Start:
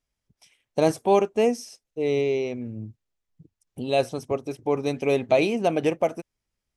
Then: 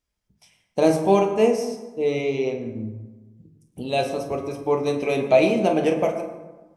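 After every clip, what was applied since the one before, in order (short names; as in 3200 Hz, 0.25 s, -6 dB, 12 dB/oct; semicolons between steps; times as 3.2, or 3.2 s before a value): reverb RT60 1.2 s, pre-delay 7 ms, DRR 1.5 dB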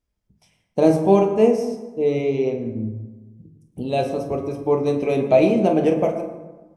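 tilt shelf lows +5 dB, about 790 Hz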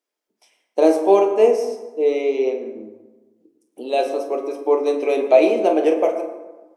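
inverse Chebyshev high-pass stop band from 160 Hz, stop band 40 dB; gain +2.5 dB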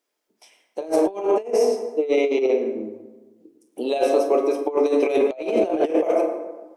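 negative-ratio compressor -21 dBFS, ratio -0.5; gain +1.5 dB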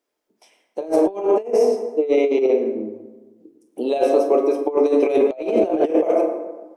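tilt shelf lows +3.5 dB, about 1100 Hz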